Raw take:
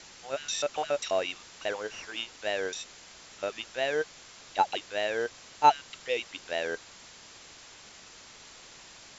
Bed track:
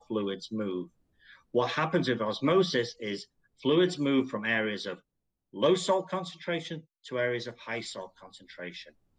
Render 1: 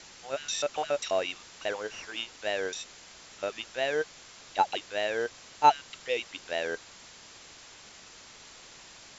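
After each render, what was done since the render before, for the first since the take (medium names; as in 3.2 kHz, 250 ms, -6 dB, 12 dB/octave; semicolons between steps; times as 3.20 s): no audible change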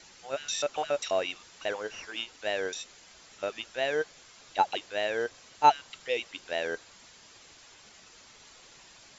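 noise reduction 6 dB, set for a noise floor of -51 dBFS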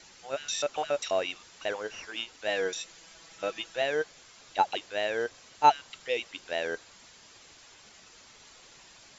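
2.48–3.82 s: comb 6.1 ms, depth 67%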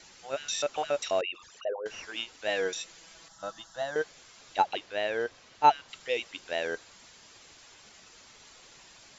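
1.21–1.86 s: resonances exaggerated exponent 3; 3.28–3.96 s: static phaser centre 1 kHz, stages 4; 4.62–5.89 s: distance through air 81 m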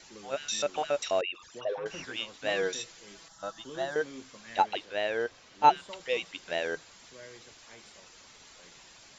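add bed track -19.5 dB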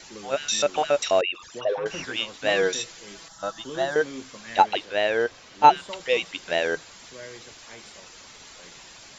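trim +7.5 dB; peak limiter -3 dBFS, peak gain reduction 2.5 dB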